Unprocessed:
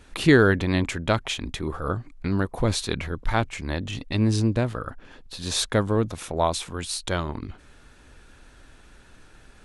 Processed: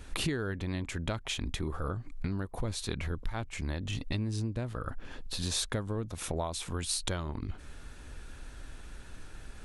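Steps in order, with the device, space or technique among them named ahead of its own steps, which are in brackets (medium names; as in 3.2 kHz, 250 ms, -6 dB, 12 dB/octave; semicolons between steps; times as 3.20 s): ASMR close-microphone chain (bass shelf 110 Hz +7.5 dB; compression 10:1, threshold -30 dBFS, peak gain reduction 20 dB; treble shelf 7.9 kHz +5.5 dB)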